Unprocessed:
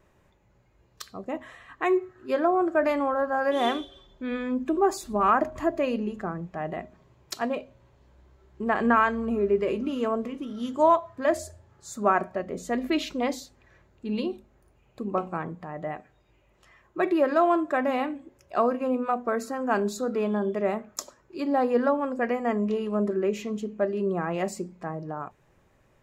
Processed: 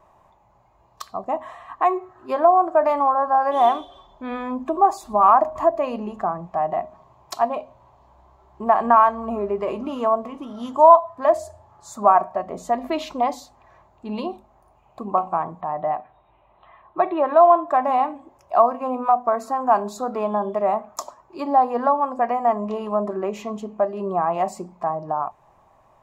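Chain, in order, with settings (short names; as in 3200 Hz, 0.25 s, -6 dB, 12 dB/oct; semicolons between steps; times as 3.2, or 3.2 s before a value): band shelf 860 Hz +15.5 dB 1.1 oct; in parallel at +1 dB: compressor, threshold -22 dBFS, peak gain reduction 20 dB; 15.61–17.68 on the sum: brick-wall FIR low-pass 4200 Hz; gain -6.5 dB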